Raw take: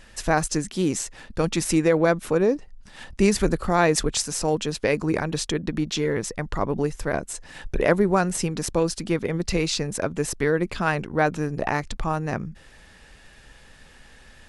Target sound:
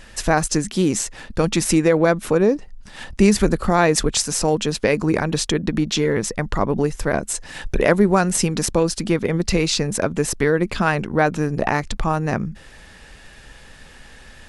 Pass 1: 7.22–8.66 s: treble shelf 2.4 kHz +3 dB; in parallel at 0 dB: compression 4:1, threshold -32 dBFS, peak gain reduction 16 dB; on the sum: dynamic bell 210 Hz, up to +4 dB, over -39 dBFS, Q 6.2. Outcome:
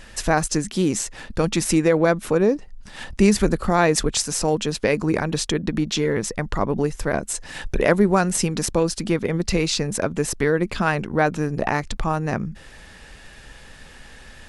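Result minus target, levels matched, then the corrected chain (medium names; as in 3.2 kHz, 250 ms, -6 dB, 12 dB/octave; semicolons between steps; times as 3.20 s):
compression: peak gain reduction +7 dB
7.22–8.66 s: treble shelf 2.4 kHz +3 dB; in parallel at 0 dB: compression 4:1, threshold -23 dBFS, peak gain reduction 9 dB; on the sum: dynamic bell 210 Hz, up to +4 dB, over -39 dBFS, Q 6.2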